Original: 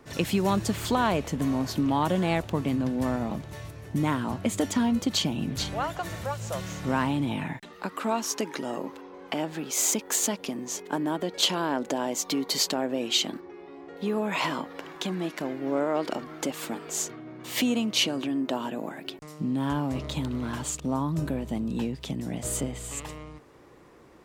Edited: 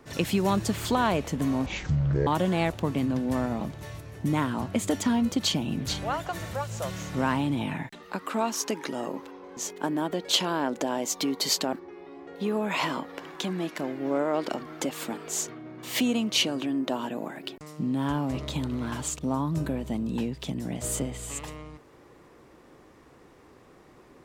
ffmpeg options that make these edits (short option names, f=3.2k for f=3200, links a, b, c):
-filter_complex "[0:a]asplit=5[a][b][c][d][e];[a]atrim=end=1.664[f];[b]atrim=start=1.66:end=1.97,asetpts=PTS-STARTPTS,asetrate=22491,aresample=44100[g];[c]atrim=start=1.966:end=9.272[h];[d]atrim=start=10.658:end=12.822[i];[e]atrim=start=13.338[j];[f][g]acrossfade=d=0.004:c1=hsin:c2=hsin[k];[k][h]acrossfade=d=0.004:c1=hsin:c2=hsin[l];[l][i]acrossfade=d=0.004:c1=hsin:c2=hsin[m];[m][j]acrossfade=d=0.004:c1=hsin:c2=hsin"